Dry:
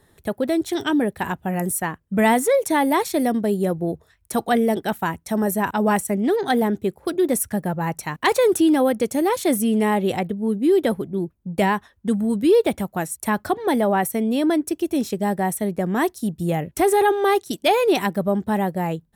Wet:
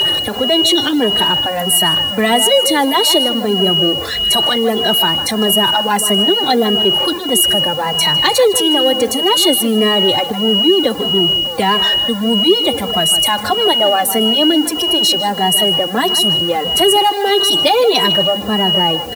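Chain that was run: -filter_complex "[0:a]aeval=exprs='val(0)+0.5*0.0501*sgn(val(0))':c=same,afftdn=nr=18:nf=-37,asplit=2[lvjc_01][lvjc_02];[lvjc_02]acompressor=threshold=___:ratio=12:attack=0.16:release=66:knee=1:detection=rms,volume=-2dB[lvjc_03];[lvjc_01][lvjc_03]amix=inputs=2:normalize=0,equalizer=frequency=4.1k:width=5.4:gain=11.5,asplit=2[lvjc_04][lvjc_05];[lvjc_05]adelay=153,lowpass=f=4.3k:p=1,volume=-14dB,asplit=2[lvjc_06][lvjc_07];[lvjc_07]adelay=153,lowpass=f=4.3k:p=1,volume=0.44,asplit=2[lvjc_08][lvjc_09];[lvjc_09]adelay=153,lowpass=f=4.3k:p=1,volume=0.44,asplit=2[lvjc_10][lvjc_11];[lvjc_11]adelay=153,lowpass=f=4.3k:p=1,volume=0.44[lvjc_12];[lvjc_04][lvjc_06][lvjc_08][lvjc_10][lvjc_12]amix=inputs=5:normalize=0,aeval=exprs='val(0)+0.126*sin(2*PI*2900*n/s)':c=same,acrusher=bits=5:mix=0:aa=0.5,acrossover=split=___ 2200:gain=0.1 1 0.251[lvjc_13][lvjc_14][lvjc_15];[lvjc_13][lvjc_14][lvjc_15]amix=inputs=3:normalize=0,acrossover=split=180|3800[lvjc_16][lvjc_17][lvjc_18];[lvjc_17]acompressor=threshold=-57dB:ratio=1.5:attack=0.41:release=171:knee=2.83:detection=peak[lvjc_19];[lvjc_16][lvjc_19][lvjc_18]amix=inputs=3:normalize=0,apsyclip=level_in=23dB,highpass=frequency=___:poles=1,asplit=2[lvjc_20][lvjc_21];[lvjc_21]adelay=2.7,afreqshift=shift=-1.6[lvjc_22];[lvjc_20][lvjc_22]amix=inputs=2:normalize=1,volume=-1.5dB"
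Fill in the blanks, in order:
-26dB, 350, 75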